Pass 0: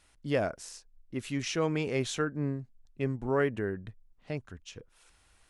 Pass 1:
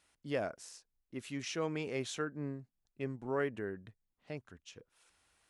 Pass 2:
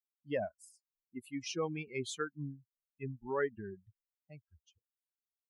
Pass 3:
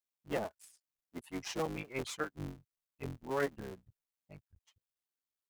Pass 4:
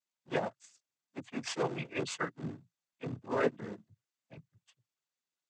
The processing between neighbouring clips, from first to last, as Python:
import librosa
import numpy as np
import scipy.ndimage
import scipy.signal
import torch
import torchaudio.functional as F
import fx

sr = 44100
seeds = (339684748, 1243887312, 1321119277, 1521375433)

y1 = fx.highpass(x, sr, hz=160.0, slope=6)
y1 = F.gain(torch.from_numpy(y1), -6.0).numpy()
y2 = fx.bin_expand(y1, sr, power=3.0)
y2 = F.gain(torch.from_numpy(y2), 4.5).numpy()
y3 = fx.cycle_switch(y2, sr, every=3, mode='muted')
y3 = F.gain(torch.from_numpy(y3), 1.0).numpy()
y4 = fx.noise_vocoder(y3, sr, seeds[0], bands=16)
y4 = F.gain(torch.from_numpy(y4), 3.5).numpy()